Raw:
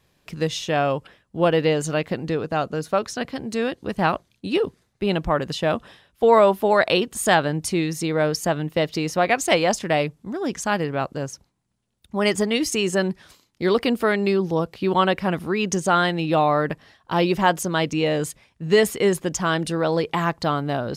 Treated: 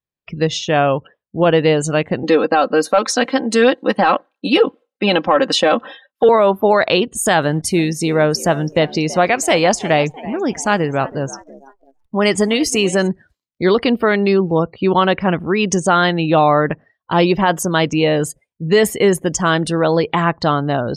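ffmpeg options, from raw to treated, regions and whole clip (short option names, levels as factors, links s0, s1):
-filter_complex "[0:a]asettb=1/sr,asplit=3[s0][s1][s2];[s0]atrim=end=2.234[s3];[s1]atrim=start=2.23:end=6.29,asetpts=PTS-STARTPTS,afade=t=in:d=0.004:c=qsin,afade=t=out:st=4.056:d=0.004:c=qsin,highpass=300,aecho=1:1:3.8:0.71,atrim=end_sample=179046,acontrast=42[s4];[s2]atrim=start=6.286[s5];[s3][s4]acrossfade=d=0.004:c1=hsin:c2=qsin[s6];[s6][s5]acrossfade=d=0.004:c1=qsin:c2=hsin,asettb=1/sr,asplit=3[s7][s8][s9];[s7]atrim=end=7.424[s10];[s8]atrim=start=7.42:end=13.08,asetpts=PTS-STARTPTS,afade=t=in:d=0.004:c=qsin,afade=t=out:st=5.656:d=0.004:c=qsin,asplit=5[s11][s12][s13][s14][s15];[s12]adelay=330,afreqshift=66,volume=0.133[s16];[s13]adelay=660,afreqshift=132,volume=0.0638[s17];[s14]adelay=990,afreqshift=198,volume=0.0305[s18];[s15]adelay=1320,afreqshift=264,volume=0.0148[s19];[s11][s16][s17][s18][s19]amix=inputs=5:normalize=0,atrim=end_sample=249606,acrusher=bits=8:dc=4:mix=0:aa=0.000001[s20];[s9]atrim=start=13.076[s21];[s10][s20]acrossfade=d=0.004:c1=hsin:c2=qsin[s22];[s22][s21]acrossfade=d=0.004:c1=qsin:c2=hsin,afftdn=nr=35:nf=-40,alimiter=level_in=2.82:limit=0.891:release=50:level=0:latency=1,volume=0.75"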